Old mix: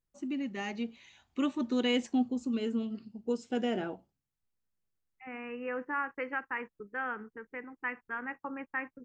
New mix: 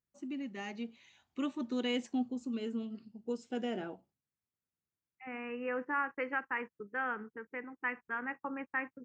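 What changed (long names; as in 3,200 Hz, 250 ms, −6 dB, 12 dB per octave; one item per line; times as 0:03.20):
first voice −5.0 dB
master: add high-pass filter 88 Hz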